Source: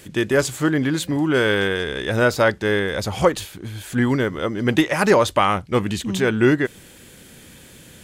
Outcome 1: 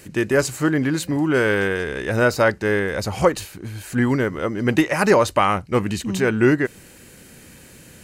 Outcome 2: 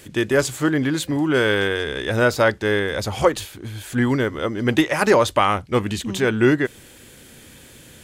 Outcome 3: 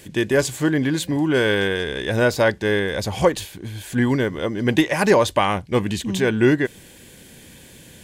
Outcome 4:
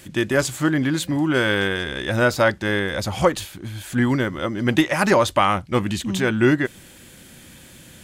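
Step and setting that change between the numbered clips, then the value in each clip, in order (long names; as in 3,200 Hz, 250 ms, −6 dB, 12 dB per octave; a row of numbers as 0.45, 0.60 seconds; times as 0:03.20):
notch filter, centre frequency: 3,400, 180, 1,300, 440 Hertz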